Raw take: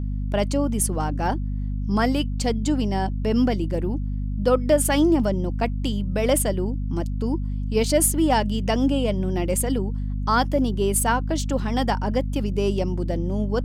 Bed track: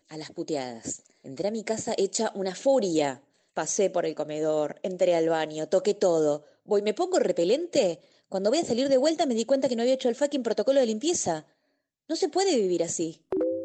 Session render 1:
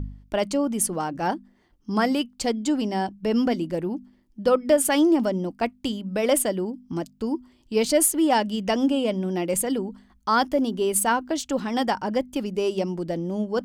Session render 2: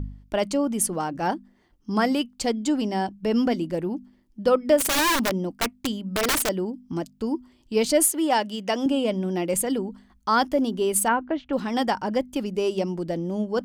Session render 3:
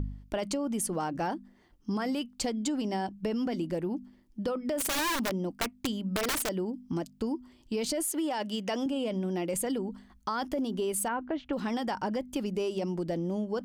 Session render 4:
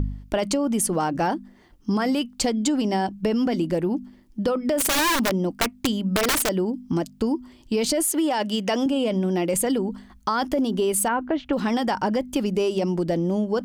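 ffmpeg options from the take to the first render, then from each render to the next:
-af "bandreject=f=50:t=h:w=4,bandreject=f=100:t=h:w=4,bandreject=f=150:t=h:w=4,bandreject=f=200:t=h:w=4,bandreject=f=250:t=h:w=4"
-filter_complex "[0:a]asettb=1/sr,asplit=3[s0][s1][s2];[s0]atrim=end=4.774[s3];[s1]atrim=start=4.77:end=6.49,asetpts=PTS-STARTPTS,afade=t=in:d=0.004:c=qsin,afade=t=out:st=1.716:d=0.004:c=qsin,aeval=exprs='(mod(7.08*val(0)+1,2)-1)/7.08':c=same[s4];[s2]atrim=start=6.486[s5];[s3][s4]acrossfade=d=0.004:c1=hsin:c2=qsin[s6];[s6][s5]acrossfade=d=0.004:c1=qsin:c2=hsin,asettb=1/sr,asplit=3[s7][s8][s9];[s7]atrim=end=8.114[s10];[s8]atrim=start=8.11:end=8.86,asetpts=PTS-STARTPTS,afade=t=in:d=0.004:c=qsin,afade=t=out:st=0.746:d=0.004:c=qsin,highpass=f=350:p=1[s11];[s9]atrim=start=8.856[s12];[s10][s11]acrossfade=d=0.004:c1=hsin:c2=qsin[s13];[s13][s12]acrossfade=d=0.004:c1=qsin:c2=hsin,asettb=1/sr,asplit=3[s14][s15][s16];[s14]atrim=end=11.084[s17];[s15]atrim=start=11.08:end=11.53,asetpts=PTS-STARTPTS,afade=t=in:d=0.004:c=qsin,afade=t=out:st=0.446:d=0.004:c=qsin,lowpass=f=2600:w=0.5412,lowpass=f=2600:w=1.3066[s18];[s16]atrim=start=11.526[s19];[s17][s18]acrossfade=d=0.004:c1=hsin:c2=qsin[s20];[s20][s19]acrossfade=d=0.004:c1=qsin:c2=hsin"
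-af "alimiter=limit=0.119:level=0:latency=1:release=17,acompressor=threshold=0.0398:ratio=6"
-af "volume=2.66"

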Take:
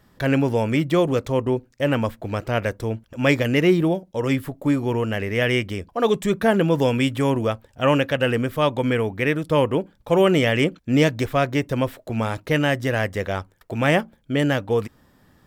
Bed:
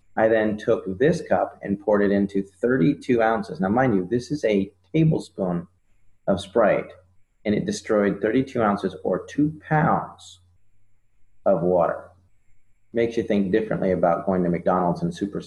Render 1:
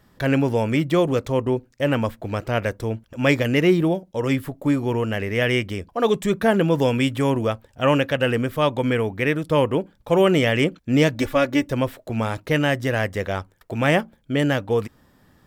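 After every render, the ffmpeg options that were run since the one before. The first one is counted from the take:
-filter_complex "[0:a]asettb=1/sr,asplit=3[s0][s1][s2];[s0]atrim=end=11.144[s3];[s1]atrim=start=11.14:end=11.72,asetpts=PTS-STARTPTS,afade=t=in:d=0.004:c=qsin,afade=t=out:st=0.576:d=0.004:c=qsin,aecho=1:1:3.5:0.65,atrim=end_sample=25578[s4];[s2]atrim=start=11.716[s5];[s3][s4]acrossfade=d=0.004:c1=hsin:c2=qsin[s6];[s6][s5]acrossfade=d=0.004:c1=qsin:c2=hsin"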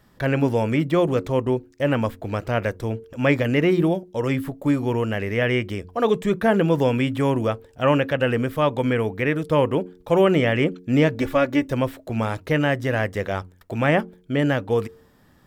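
-filter_complex "[0:a]bandreject=f=90.16:t=h:w=4,bandreject=f=180.32:t=h:w=4,bandreject=f=270.48:t=h:w=4,bandreject=f=360.64:t=h:w=4,bandreject=f=450.8:t=h:w=4,acrossover=split=2800[s0][s1];[s1]acompressor=threshold=0.01:ratio=4:attack=1:release=60[s2];[s0][s2]amix=inputs=2:normalize=0"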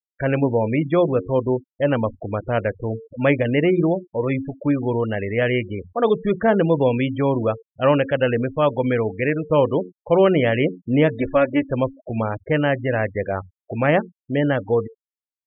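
-af "afftfilt=real='re*gte(hypot(re,im),0.0447)':imag='im*gte(hypot(re,im),0.0447)':win_size=1024:overlap=0.75,equalizer=f=560:w=1.5:g=3"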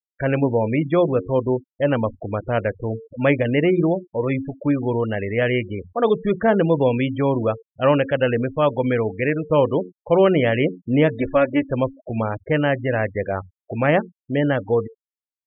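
-af anull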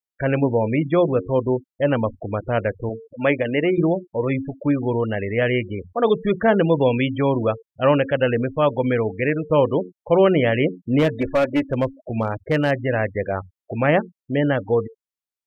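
-filter_complex "[0:a]asettb=1/sr,asplit=3[s0][s1][s2];[s0]atrim=end=2.894[s3];[s1]atrim=start=2.89:end=3.78,asetpts=PTS-STARTPTS,afade=t=in:d=0.004:c=qsin,afade=t=out:st=0.886:d=0.004:c=qsin,highpass=f=260:p=1[s4];[s2]atrim=start=3.776[s5];[s3][s4]acrossfade=d=0.004:c1=hsin:c2=qsin[s6];[s6][s5]acrossfade=d=0.004:c1=qsin:c2=hsin,asettb=1/sr,asplit=3[s7][s8][s9];[s7]atrim=end=6.074[s10];[s8]atrim=start=6.07:end=7.51,asetpts=PTS-STARTPTS,afade=t=in:d=0.004:c=qsin,afade=t=out:st=1.436:d=0.004:c=qsin,highshelf=f=2800:g=7.5[s11];[s9]atrim=start=7.506[s12];[s10][s11]acrossfade=d=0.004:c1=hsin:c2=qsin[s13];[s13][s12]acrossfade=d=0.004:c1=qsin:c2=hsin,asplit=3[s14][s15][s16];[s14]afade=t=out:st=10.98:d=0.02[s17];[s15]asoftclip=type=hard:threshold=0.224,afade=t=in:st=10.98:d=0.02,afade=t=out:st=12.7:d=0.02[s18];[s16]afade=t=in:st=12.7:d=0.02[s19];[s17][s18][s19]amix=inputs=3:normalize=0"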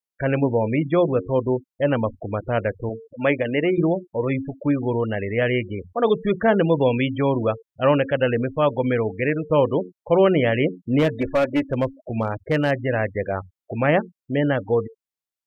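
-af "volume=0.891"

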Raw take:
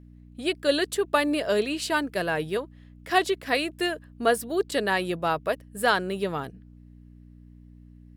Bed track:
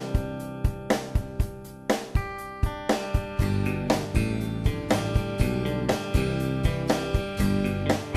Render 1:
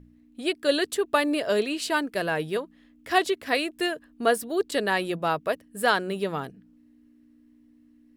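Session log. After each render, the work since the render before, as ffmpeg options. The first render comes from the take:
-af "bandreject=f=60:t=h:w=4,bandreject=f=120:t=h:w=4,bandreject=f=180:t=h:w=4"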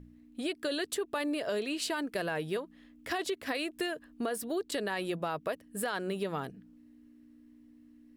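-af "alimiter=limit=0.119:level=0:latency=1:release=22,acompressor=threshold=0.0282:ratio=4"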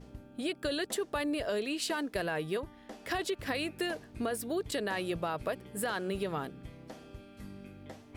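-filter_complex "[1:a]volume=0.0668[s0];[0:a][s0]amix=inputs=2:normalize=0"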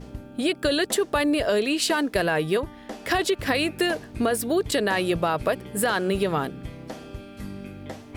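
-af "volume=3.35"

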